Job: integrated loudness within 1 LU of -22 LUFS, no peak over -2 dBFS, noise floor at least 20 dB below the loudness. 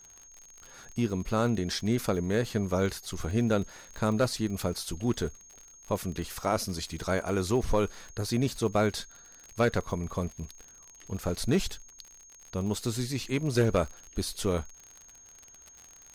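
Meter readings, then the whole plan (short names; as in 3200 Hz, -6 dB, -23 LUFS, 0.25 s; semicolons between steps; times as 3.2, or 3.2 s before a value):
ticks 54/s; steady tone 6500 Hz; tone level -51 dBFS; loudness -30.5 LUFS; peak -15.5 dBFS; loudness target -22.0 LUFS
-> de-click; notch 6500 Hz, Q 30; gain +8.5 dB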